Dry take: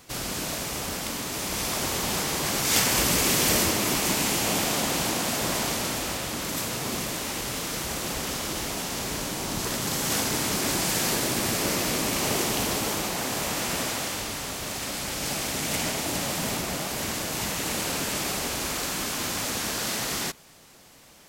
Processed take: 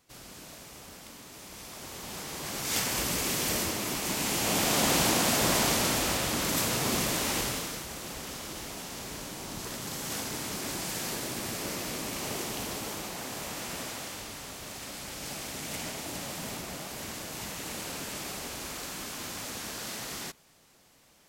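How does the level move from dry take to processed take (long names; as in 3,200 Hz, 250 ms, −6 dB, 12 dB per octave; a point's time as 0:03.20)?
0:01.72 −16 dB
0:02.73 −7.5 dB
0:04.01 −7.5 dB
0:04.90 +1.5 dB
0:07.40 +1.5 dB
0:07.86 −9 dB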